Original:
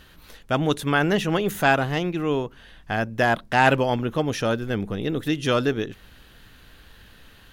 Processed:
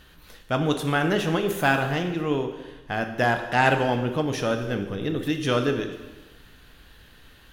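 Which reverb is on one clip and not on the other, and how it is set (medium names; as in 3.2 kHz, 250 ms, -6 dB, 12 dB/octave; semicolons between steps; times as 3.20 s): plate-style reverb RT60 1.2 s, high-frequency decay 0.95×, DRR 5.5 dB; trim -2.5 dB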